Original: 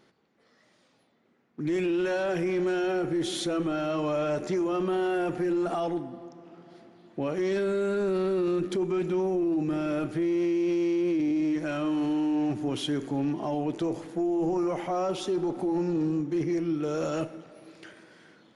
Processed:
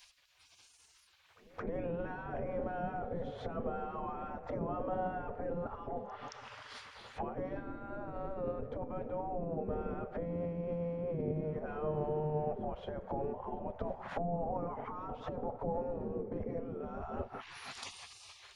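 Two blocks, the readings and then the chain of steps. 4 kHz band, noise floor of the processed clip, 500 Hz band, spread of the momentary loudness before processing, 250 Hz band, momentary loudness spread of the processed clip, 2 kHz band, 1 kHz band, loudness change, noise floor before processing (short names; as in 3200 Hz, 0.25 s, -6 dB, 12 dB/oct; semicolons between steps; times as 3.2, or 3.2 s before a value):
-14.0 dB, -65 dBFS, -10.0 dB, 5 LU, -16.0 dB, 8 LU, -11.5 dB, -4.5 dB, -11.5 dB, -66 dBFS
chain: treble ducked by the level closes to 340 Hz, closed at -27.5 dBFS; spectral gate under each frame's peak -20 dB weak; pre-echo 0.222 s -23 dB; gain +14 dB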